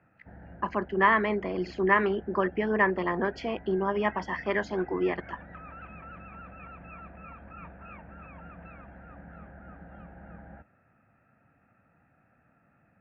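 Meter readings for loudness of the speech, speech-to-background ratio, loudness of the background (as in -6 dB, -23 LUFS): -27.5 LUFS, 20.0 dB, -47.5 LUFS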